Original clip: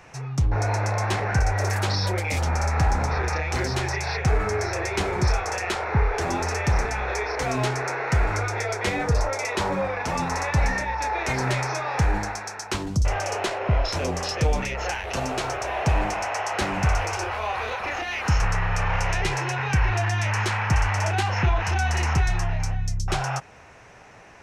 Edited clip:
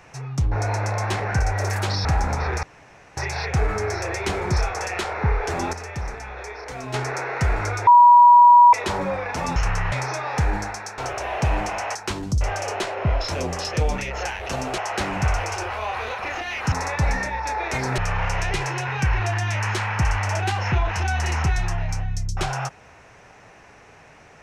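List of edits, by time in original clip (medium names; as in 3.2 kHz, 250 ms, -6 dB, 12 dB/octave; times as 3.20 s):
2.05–2.76 s: delete
3.34–3.88 s: room tone
6.44–7.65 s: gain -8 dB
8.58–9.44 s: bleep 966 Hz -7 dBFS
10.27–11.53 s: swap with 18.33–18.69 s
15.42–16.39 s: move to 12.59 s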